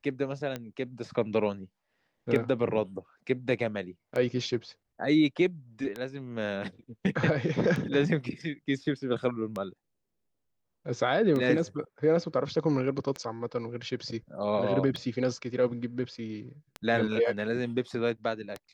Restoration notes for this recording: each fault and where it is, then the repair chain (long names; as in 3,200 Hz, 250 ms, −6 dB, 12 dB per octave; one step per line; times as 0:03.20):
scratch tick 33 1/3 rpm −20 dBFS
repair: click removal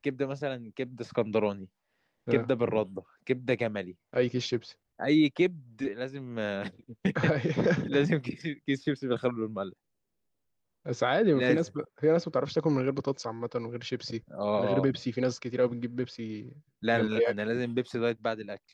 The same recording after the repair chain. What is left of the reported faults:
none of them is left